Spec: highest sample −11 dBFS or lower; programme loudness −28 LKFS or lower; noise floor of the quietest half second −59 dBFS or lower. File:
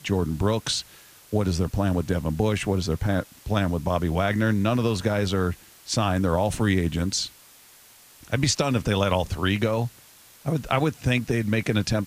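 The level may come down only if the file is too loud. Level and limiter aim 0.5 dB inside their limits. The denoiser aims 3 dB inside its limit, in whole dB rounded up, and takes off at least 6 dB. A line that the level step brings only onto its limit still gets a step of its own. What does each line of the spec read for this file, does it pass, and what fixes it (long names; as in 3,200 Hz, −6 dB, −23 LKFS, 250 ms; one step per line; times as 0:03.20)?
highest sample −8.0 dBFS: out of spec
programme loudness −25.0 LKFS: out of spec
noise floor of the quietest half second −52 dBFS: out of spec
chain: broadband denoise 7 dB, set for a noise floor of −52 dBFS
level −3.5 dB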